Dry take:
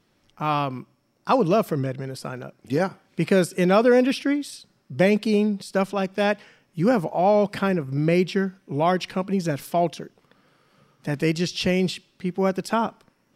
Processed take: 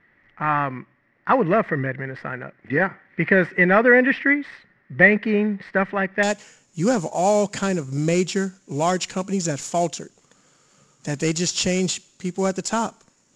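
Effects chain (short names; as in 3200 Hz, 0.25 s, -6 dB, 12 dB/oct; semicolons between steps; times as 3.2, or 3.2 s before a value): CVSD 64 kbps; synth low-pass 1900 Hz, resonance Q 11, from 6.23 s 7000 Hz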